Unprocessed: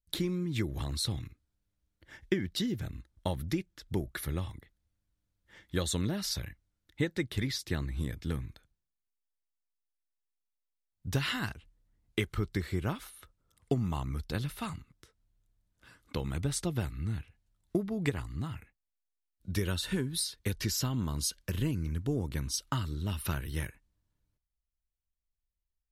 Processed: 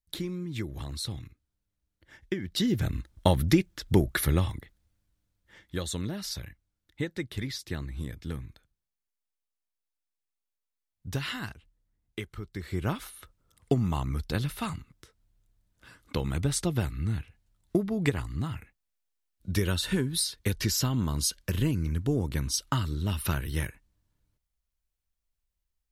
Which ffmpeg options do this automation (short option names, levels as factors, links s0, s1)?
-af "volume=14.1,afade=t=in:st=2.42:d=0.5:silence=0.237137,afade=t=out:st=4.13:d=1.64:silence=0.251189,afade=t=out:st=11.29:d=1.23:silence=0.473151,afade=t=in:st=12.52:d=0.42:silence=0.237137"